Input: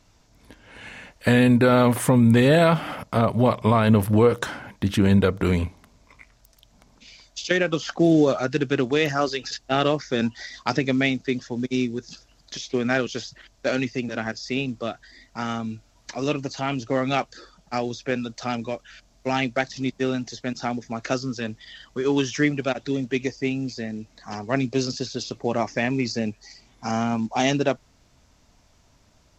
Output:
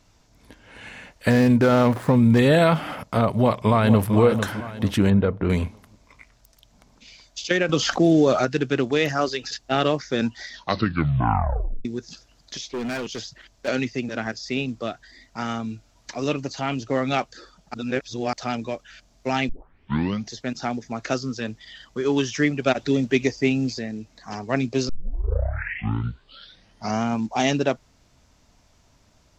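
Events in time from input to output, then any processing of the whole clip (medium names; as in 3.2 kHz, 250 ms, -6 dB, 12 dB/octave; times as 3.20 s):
1.30–2.39 s: median filter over 15 samples
3.27–4.15 s: echo throw 450 ms, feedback 40%, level -9 dB
5.10–5.50 s: tape spacing loss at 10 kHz 35 dB
7.69–8.45 s: level flattener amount 50%
10.47 s: tape stop 1.38 s
12.65–13.68 s: overload inside the chain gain 25.5 dB
17.74–18.33 s: reverse
19.49 s: tape start 0.81 s
22.66–23.79 s: gain +4.5 dB
24.89 s: tape start 2.13 s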